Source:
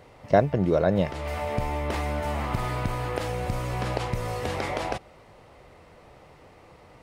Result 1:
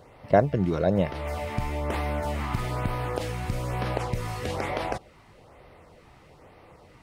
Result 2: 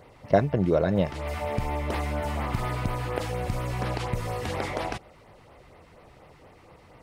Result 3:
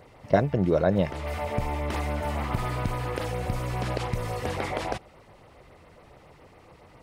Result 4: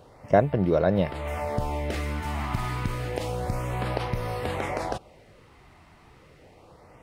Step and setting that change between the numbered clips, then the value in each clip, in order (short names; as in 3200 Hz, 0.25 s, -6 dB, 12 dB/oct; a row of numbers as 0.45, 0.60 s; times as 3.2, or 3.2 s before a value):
LFO notch, rate: 1.1, 4.2, 7.2, 0.3 Hz